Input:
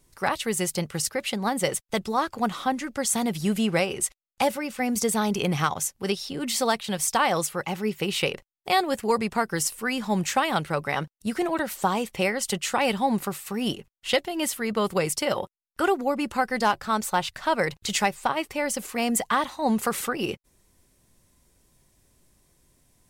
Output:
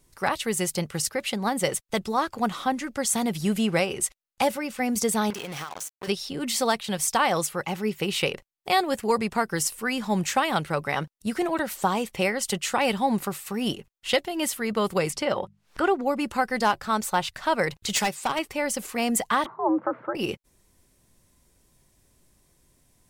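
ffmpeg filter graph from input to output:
-filter_complex "[0:a]asettb=1/sr,asplit=3[a][b][c];[a]atrim=end=5.304[d];[b]atrim=start=5.3:end=6.08,asetpts=PTS-STARTPTS,afade=t=in:d=0.004:c=qsin,afade=t=out:st=0.776:d=0.004:c=qsin,acrusher=bits=4:mix=0:aa=0.5,lowshelf=f=230:g=-12,acompressor=threshold=-30dB:ratio=16:attack=3.2:release=140:knee=1:detection=peak[e];[c]atrim=start=6.076[f];[d][e]acrossfade=d=0.004:c1=hsin:c2=qsin[g];[g][f]acrossfade=d=0.004:c1=qsin:c2=hsin,asettb=1/sr,asplit=3[h][i][j];[h]atrim=end=15.104[k];[i]atrim=start=15.1:end=16.06,asetpts=PTS-STARTPTS,afade=t=in:d=0.004:c=qsin,afade=t=out:st=0.956:d=0.004:c=qsin,aemphasis=mode=reproduction:type=50fm,acompressor=mode=upward:threshold=-27dB:ratio=2.5:attack=3.2:release=140:knee=2.83:detection=peak,bandreject=f=50:t=h:w=6,bandreject=f=100:t=h:w=6,bandreject=f=150:t=h:w=6,bandreject=f=200:t=h:w=6[l];[j]atrim=start=16.056[m];[k][l]acrossfade=d=0.004:c1=hsin:c2=qsin[n];[n][m]acrossfade=d=0.004:c1=qsin:c2=hsin,asettb=1/sr,asplit=3[o][p][q];[o]atrim=end=17.964[r];[p]atrim=start=17.96:end=18.39,asetpts=PTS-STARTPTS,afade=t=in:d=0.004:c=qsin,afade=t=out:st=0.426:d=0.004:c=qsin,highpass=84,equalizer=f=6.7k:w=0.38:g=6.5,asoftclip=type=hard:threshold=-19.5dB[s];[q]atrim=start=18.386[t];[r][s]acrossfade=d=0.004:c1=hsin:c2=qsin[u];[u][t]acrossfade=d=0.004:c1=qsin:c2=hsin,asettb=1/sr,asplit=3[v][w][x];[v]atrim=end=19.464[y];[w]atrim=start=19.46:end=20.15,asetpts=PTS-STARTPTS,afade=t=in:d=0.004:c=qsin,afade=t=out:st=0.686:d=0.004:c=qsin,lowpass=f=1.2k:w=0.5412,lowpass=f=1.2k:w=1.3066,afreqshift=97[z];[x]atrim=start=20.146[aa];[y][z]acrossfade=d=0.004:c1=hsin:c2=qsin[ab];[ab][aa]acrossfade=d=0.004:c1=qsin:c2=hsin"

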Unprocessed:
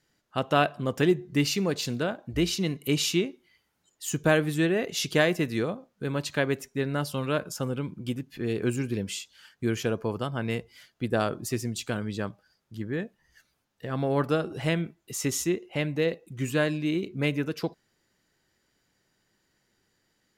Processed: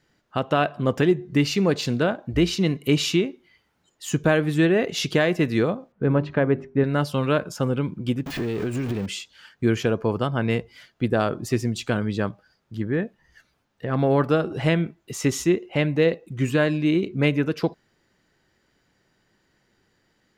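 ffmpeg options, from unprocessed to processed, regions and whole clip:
-filter_complex "[0:a]asettb=1/sr,asplit=3[a][b][c];[a]atrim=end=5.924[d];[b]atrim=start=5.92:end=6.84,asetpts=PTS-STARTPTS,afade=t=in:d=0.004:c=qsin,afade=t=out:st=0.916:d=0.004:c=qsin,lowpass=2.2k,tiltshelf=f=1.2k:g=4,bandreject=f=50:t=h:w=6,bandreject=f=100:t=h:w=6,bandreject=f=150:t=h:w=6,bandreject=f=200:t=h:w=6,bandreject=f=250:t=h:w=6,bandreject=f=300:t=h:w=6,bandreject=f=350:t=h:w=6,bandreject=f=400:t=h:w=6[e];[c]atrim=start=6.836[f];[d][e]acrossfade=d=0.004:c1=hsin:c2=qsin[g];[g][f]acrossfade=d=0.004:c1=qsin:c2=hsin,asettb=1/sr,asplit=3[h][i][j];[h]atrim=end=8.264[k];[i]atrim=start=8.26:end=9.06,asetpts=PTS-STARTPTS,afade=t=in:d=0.004:c=qsin,afade=t=out:st=0.796:d=0.004:c=qsin,aeval=exprs='val(0)+0.5*0.0237*sgn(val(0))':c=same,acompressor=threshold=-29dB:ratio=12:attack=3.2:release=140:knee=1:detection=peak[l];[j]atrim=start=9.056[m];[k][l]acrossfade=d=0.004:c1=hsin:c2=qsin[n];[n][m]acrossfade=d=0.004:c1=qsin:c2=hsin,asettb=1/sr,asplit=3[o][p][q];[o]atrim=end=12.864[r];[p]atrim=start=12.86:end=13.99,asetpts=PTS-STARTPTS,afade=t=in:d=0.004:c=qsin,afade=t=out:st=1.126:d=0.004:c=qsin,acrossover=split=2900[s][t];[t]acompressor=threshold=-58dB:ratio=4:attack=1:release=60[u];[s][u]amix=inputs=2:normalize=0,asoftclip=type=hard:threshold=-21dB[v];[q]atrim=start=13.986[w];[r][v]acrossfade=d=0.004:c1=hsin:c2=qsin[x];[x][w]acrossfade=d=0.004:c1=qsin:c2=hsin,equalizer=f=13k:t=o:w=1.8:g=-11.5,alimiter=limit=-16.5dB:level=0:latency=1:release=284,volume=7dB"

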